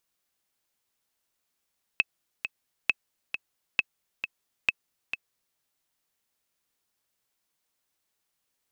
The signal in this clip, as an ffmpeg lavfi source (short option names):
-f lavfi -i "aevalsrc='pow(10,(-8-9*gte(mod(t,2*60/134),60/134))/20)*sin(2*PI*2600*mod(t,60/134))*exp(-6.91*mod(t,60/134)/0.03)':d=3.58:s=44100"